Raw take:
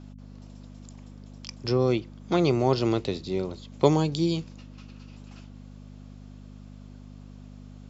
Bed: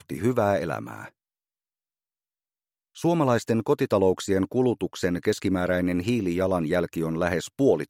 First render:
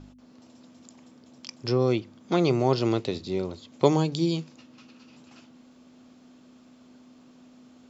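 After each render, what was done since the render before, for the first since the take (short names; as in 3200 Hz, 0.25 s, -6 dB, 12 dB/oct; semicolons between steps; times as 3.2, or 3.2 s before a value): de-hum 50 Hz, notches 4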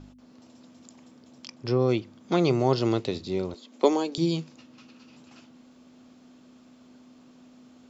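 1.47–1.89 high shelf 5200 Hz -10.5 dB; 2.54–3.01 notch 2400 Hz; 3.54–4.18 elliptic high-pass 210 Hz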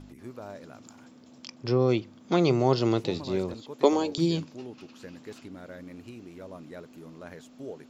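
add bed -19.5 dB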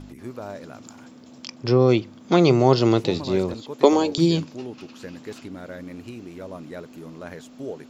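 gain +6.5 dB; limiter -2 dBFS, peak gain reduction 1.5 dB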